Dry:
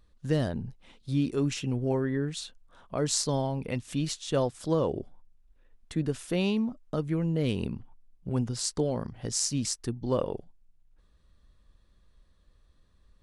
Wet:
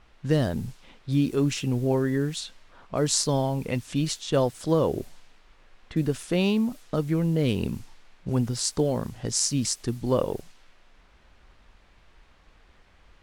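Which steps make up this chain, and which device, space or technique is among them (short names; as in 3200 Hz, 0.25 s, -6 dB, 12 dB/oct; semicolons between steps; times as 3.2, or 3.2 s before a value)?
cassette deck with a dynamic noise filter (white noise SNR 26 dB; low-pass opened by the level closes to 2100 Hz, open at -28.5 dBFS); gain +4 dB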